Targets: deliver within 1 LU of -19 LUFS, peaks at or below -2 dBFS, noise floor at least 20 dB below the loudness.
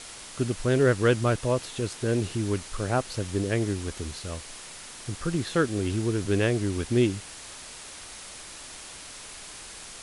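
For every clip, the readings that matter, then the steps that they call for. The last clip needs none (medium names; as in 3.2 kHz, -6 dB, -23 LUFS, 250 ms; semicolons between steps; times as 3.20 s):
noise floor -43 dBFS; noise floor target -47 dBFS; loudness -27.0 LUFS; peak level -10.5 dBFS; loudness target -19.0 LUFS
-> noise reduction 6 dB, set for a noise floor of -43 dBFS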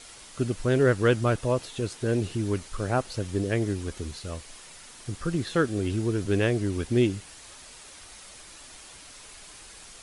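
noise floor -48 dBFS; loudness -27.0 LUFS; peak level -10.5 dBFS; loudness target -19.0 LUFS
-> trim +8 dB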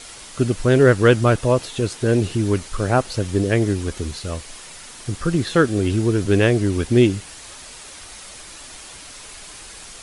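loudness -19.0 LUFS; peak level -2.5 dBFS; noise floor -40 dBFS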